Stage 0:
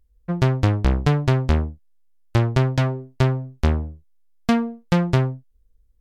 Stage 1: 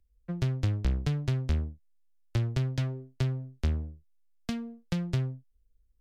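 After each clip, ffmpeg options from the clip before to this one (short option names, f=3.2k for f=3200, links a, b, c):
-filter_complex "[0:a]equalizer=f=920:w=1.2:g=-7,acrossover=split=170|3000[a][b][c];[b]acompressor=threshold=-28dB:ratio=6[d];[a][d][c]amix=inputs=3:normalize=0,volume=-8dB"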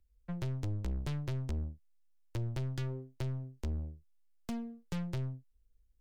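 -af "aeval=exprs='(tanh(44.7*val(0)+0.45)-tanh(0.45))/44.7':c=same"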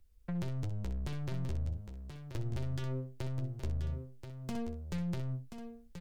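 -filter_complex "[0:a]asplit=2[a][b];[b]aecho=0:1:11|63:0.376|0.355[c];[a][c]amix=inputs=2:normalize=0,alimiter=level_in=13dB:limit=-24dB:level=0:latency=1:release=51,volume=-13dB,asplit=2[d][e];[e]aecho=0:1:1031:0.376[f];[d][f]amix=inputs=2:normalize=0,volume=6.5dB"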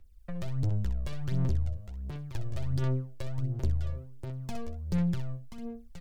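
-af "aphaser=in_gain=1:out_gain=1:delay=1.8:decay=0.65:speed=1.4:type=sinusoidal"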